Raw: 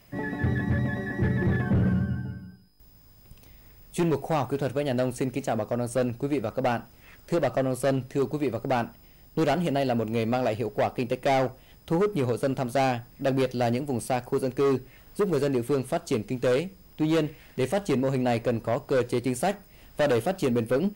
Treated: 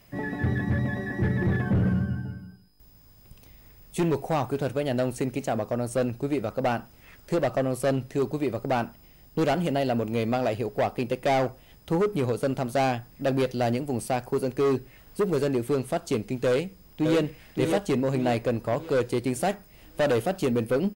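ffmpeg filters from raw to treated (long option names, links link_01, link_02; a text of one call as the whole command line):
ffmpeg -i in.wav -filter_complex "[0:a]asplit=2[link_01][link_02];[link_02]afade=type=in:start_time=16.48:duration=0.01,afade=type=out:start_time=17.2:duration=0.01,aecho=0:1:570|1140|1710|2280|2850|3420:0.562341|0.253054|0.113874|0.0512434|0.0230595|0.0103768[link_03];[link_01][link_03]amix=inputs=2:normalize=0" out.wav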